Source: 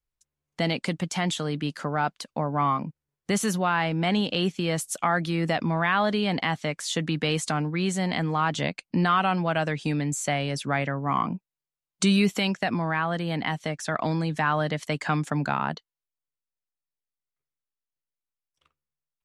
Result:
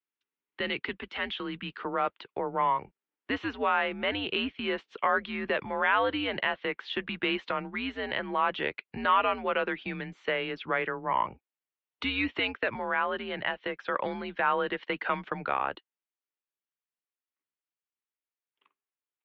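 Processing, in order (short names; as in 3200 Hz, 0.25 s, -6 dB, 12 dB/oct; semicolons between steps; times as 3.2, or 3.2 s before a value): mistuned SSB -120 Hz 400–3400 Hz; bell 660 Hz -14 dB 0.58 oct, from 1.83 s -5 dB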